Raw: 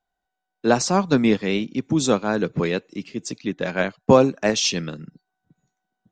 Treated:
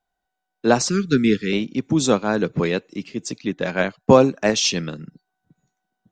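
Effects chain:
0:00.89–0:01.53: elliptic band-stop filter 430–1,400 Hz, stop band 40 dB
level +1.5 dB

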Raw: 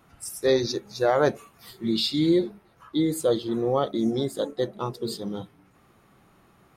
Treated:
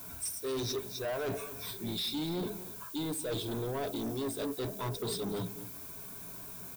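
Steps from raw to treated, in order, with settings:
EQ curve with evenly spaced ripples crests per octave 1.6, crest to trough 13 dB
reversed playback
downward compressor 6 to 1, threshold −31 dBFS, peak gain reduction 16 dB
reversed playback
background noise violet −50 dBFS
soft clipping −35.5 dBFS, distortion −9 dB
slap from a distant wall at 41 metres, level −14 dB
level +4 dB

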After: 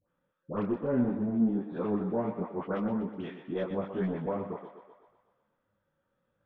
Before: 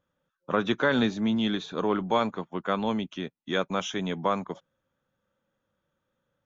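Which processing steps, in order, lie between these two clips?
treble cut that deepens with the level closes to 510 Hz, closed at −24.5 dBFS
low-pass filter 2,400 Hz 12 dB per octave
in parallel at −3 dB: brickwall limiter −21.5 dBFS, peak gain reduction 8.5 dB
on the sum: soft clipping −16 dBFS, distortion −20 dB
all-pass dispersion highs, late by 88 ms, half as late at 1,100 Hz
on a send: feedback echo with a high-pass in the loop 124 ms, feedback 61%, high-pass 310 Hz, level −8.5 dB
on the sum: micro pitch shift up and down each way 27 cents
level −1 dB

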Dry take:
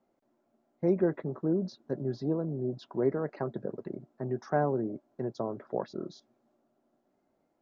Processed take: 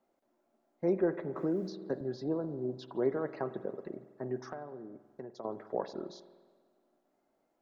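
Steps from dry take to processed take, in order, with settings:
parametric band 100 Hz −9.5 dB 2.6 octaves
0:04.39–0:05.45: downward compressor 12 to 1, threshold −41 dBFS, peak gain reduction 17.5 dB
convolution reverb RT60 1.5 s, pre-delay 47 ms, DRR 12.5 dB
0:01.36–0:02.01: multiband upward and downward compressor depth 70%

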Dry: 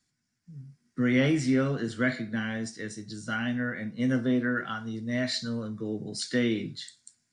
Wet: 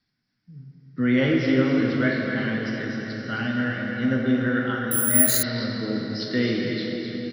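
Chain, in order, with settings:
Butterworth low-pass 5,400 Hz 96 dB per octave
on a send: single-tap delay 263 ms −7 dB
on the sum: dense smooth reverb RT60 4.9 s, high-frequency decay 0.75×, DRR 0 dB
0:04.91–0:05.43: bad sample-rate conversion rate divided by 4×, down filtered, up zero stuff
level +1.5 dB

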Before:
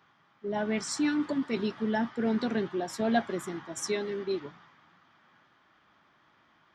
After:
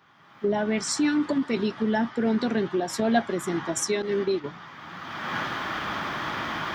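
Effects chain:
camcorder AGC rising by 28 dB per second
0:04.02–0:04.44: downward expander −29 dBFS
level +4 dB

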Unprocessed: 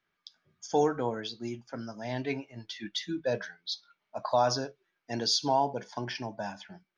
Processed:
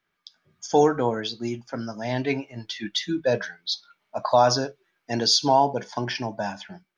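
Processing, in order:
automatic gain control gain up to 4.5 dB
level +3 dB

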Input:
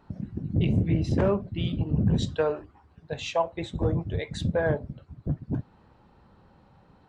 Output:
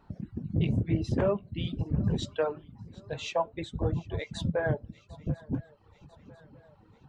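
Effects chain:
feedback echo with a long and a short gap by turns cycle 996 ms, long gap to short 3 to 1, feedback 48%, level −21.5 dB
flanger 0.51 Hz, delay 0.7 ms, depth 8.9 ms, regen +74%
reverb reduction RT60 0.73 s
level +2 dB

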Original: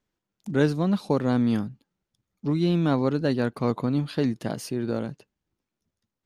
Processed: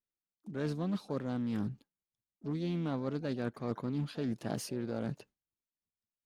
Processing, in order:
noise gate with hold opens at −43 dBFS
reversed playback
downward compressor 8 to 1, threshold −32 dBFS, peak gain reduction 16.5 dB
reversed playback
pitch-shifted copies added +7 semitones −17 dB
highs frequency-modulated by the lows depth 0.18 ms

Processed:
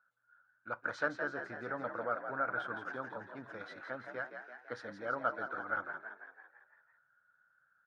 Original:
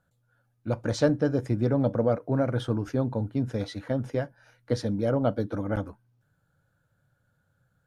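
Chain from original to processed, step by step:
resonant band-pass 1,400 Hz, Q 5.3
on a send: echo with shifted repeats 167 ms, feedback 56%, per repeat +55 Hz, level −7.5 dB
on the sum: level +7 dB

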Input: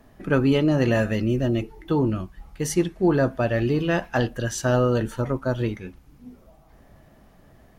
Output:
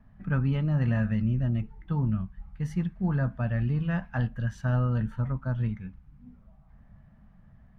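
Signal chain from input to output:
drawn EQ curve 210 Hz 0 dB, 330 Hz −22 dB, 880 Hz −10 dB, 1,600 Hz −8 dB, 7,500 Hz −27 dB

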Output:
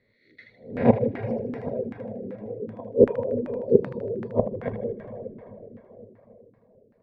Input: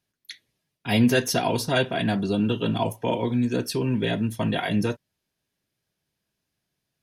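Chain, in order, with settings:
peak hold with a rise ahead of every peak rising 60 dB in 0.42 s
low shelf with overshoot 710 Hz +8.5 dB, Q 3
gate with flip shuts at −7 dBFS, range −30 dB
EQ curve with evenly spaced ripples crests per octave 0.94, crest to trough 9 dB
dense smooth reverb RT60 4.5 s, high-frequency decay 0.75×, DRR 3 dB
auto-filter low-pass saw down 2.6 Hz 310–1,700 Hz
mains-hum notches 60/120 Hz
feedback echo with a high-pass in the loop 78 ms, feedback 52%, high-pass 910 Hz, level −5 dB
reverb reduction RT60 0.54 s
level +1 dB

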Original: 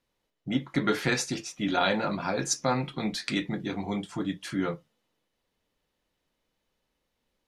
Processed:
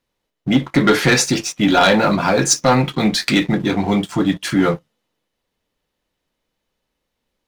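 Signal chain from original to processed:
leveller curve on the samples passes 2
level +7 dB

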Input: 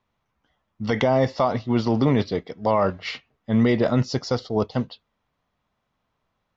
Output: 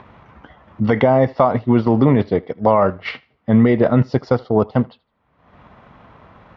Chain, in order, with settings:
transient designer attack +4 dB, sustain −5 dB
in parallel at +3 dB: brickwall limiter −16.5 dBFS, peak gain reduction 10.5 dB
on the sum: high-pass filter 47 Hz
on a send: feedback echo with a high-pass in the loop 79 ms, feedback 22%, high-pass 420 Hz, level −23 dB
on the sum: upward compression, threshold −27 dBFS
low-pass filter 2,000 Hz 12 dB per octave
level +1 dB

